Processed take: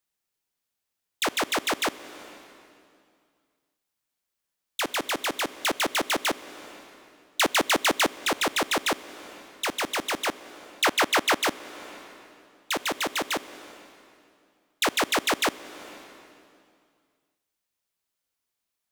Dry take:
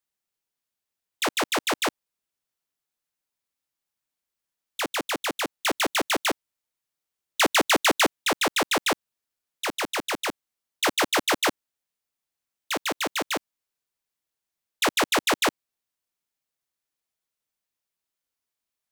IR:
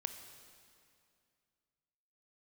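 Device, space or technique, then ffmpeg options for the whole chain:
ducked reverb: -filter_complex "[0:a]asettb=1/sr,asplit=3[link_01][link_02][link_03];[link_01]atrim=end=10.274[link_04];[link_02]atrim=start=10.27:end=11.43,asetpts=PTS-STARTPTS,afade=type=in:duration=0.004:curve=qsin,afade=type=out:start_time=1.156:duration=0.004:curve=qsin,equalizer=frequency=1300:width=0.42:gain=4.5[link_05];[link_03]atrim=start=11.426[link_06];[link_04][link_05]acrossfade=duration=0.004:curve1=hsin:curve2=qsin[link_07];[link_07][link_06]acrossfade=duration=0.004:curve1=qsin:curve2=hsin,asplit=3[link_08][link_09][link_10];[1:a]atrim=start_sample=2205[link_11];[link_09][link_11]afir=irnorm=-1:irlink=0[link_12];[link_10]apad=whole_len=833949[link_13];[link_12][link_13]sidechaincompress=threshold=-31dB:ratio=6:attack=31:release=506,volume=4dB[link_14];[link_08][link_14]amix=inputs=2:normalize=0,volume=-4.5dB"

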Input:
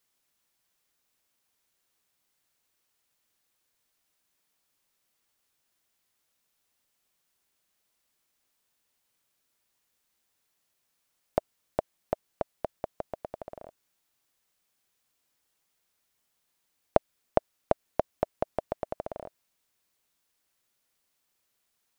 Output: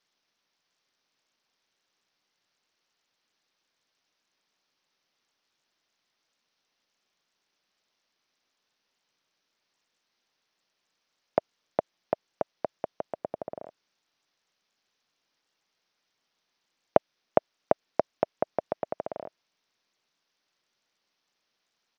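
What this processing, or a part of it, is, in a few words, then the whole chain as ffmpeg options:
Bluetooth headset: -filter_complex "[0:a]highpass=frequency=120:poles=1,asettb=1/sr,asplit=3[link_01][link_02][link_03];[link_01]atrim=end=13.174[link_04];[link_02]atrim=start=13.17:end=13.63,asetpts=PTS-STARTPTS,afade=type=in:duration=0.004:curve=qsin,afade=type=out:start_time=0.456:duration=0.004:curve=qsin,tiltshelf=frequency=1100:gain=5.5[link_05];[link_03]atrim=start=13.626[link_06];[link_04][link_05]acrossfade=duration=0.004:curve1=hsin:curve2=qsin[link_07];[link_07][link_06]acrossfade=duration=0.004:curve1=qsin:curve2=hsin,highpass=120,aresample=16000,aresample=44100,volume=2.5dB" -ar 48000 -c:a sbc -b:a 64k

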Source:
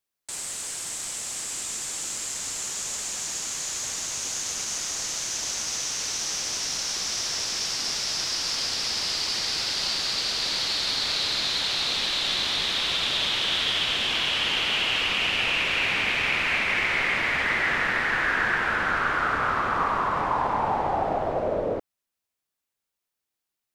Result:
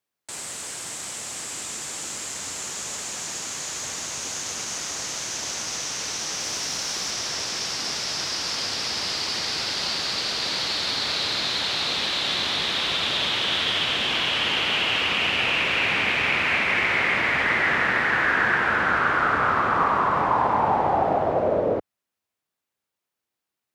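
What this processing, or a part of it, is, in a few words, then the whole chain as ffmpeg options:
behind a face mask: -filter_complex "[0:a]asettb=1/sr,asplit=3[link_01][link_02][link_03];[link_01]atrim=end=6.404[link_04];[link_02]atrim=start=6.4:end=7.11,asetpts=PTS-STARTPTS,afade=type=in:duration=0.004:curve=qsin,afade=type=out:start_time=0.706:duration=0.004:curve=qsin,highshelf=frequency=11000:gain=5.5[link_05];[link_03]atrim=start=7.106[link_06];[link_04][link_05]acrossfade=duration=0.004:curve1=hsin:curve2=qsin[link_07];[link_07][link_06]acrossfade=duration=0.004:curve1=qsin:curve2=hsin,highpass=76,highshelf=frequency=3100:gain=-7,volume=4.5dB"

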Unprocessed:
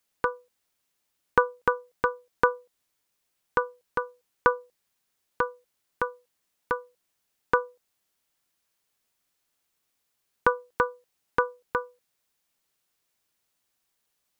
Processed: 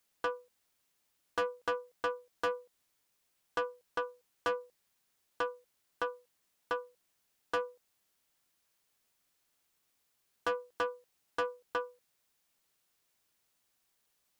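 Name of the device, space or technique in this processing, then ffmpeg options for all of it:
saturation between pre-emphasis and de-emphasis: -af "highshelf=frequency=3900:gain=7.5,asoftclip=type=tanh:threshold=-27dB,highshelf=frequency=3900:gain=-7.5"

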